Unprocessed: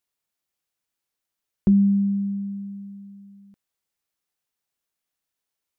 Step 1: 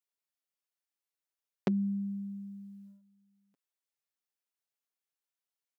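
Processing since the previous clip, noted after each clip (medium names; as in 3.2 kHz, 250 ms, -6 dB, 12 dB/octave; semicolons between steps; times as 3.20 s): gate -39 dBFS, range -11 dB; high-pass 320 Hz 12 dB/octave; comb 7.2 ms, depth 51%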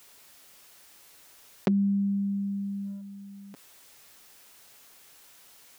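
level flattener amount 50%; trim +4 dB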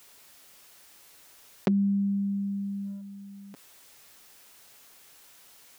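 no audible change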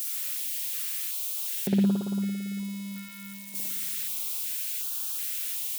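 zero-crossing glitches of -22 dBFS; spring tank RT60 1.9 s, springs 56 ms, chirp 30 ms, DRR -7 dB; step-sequenced notch 2.7 Hz 760–2000 Hz; trim -5.5 dB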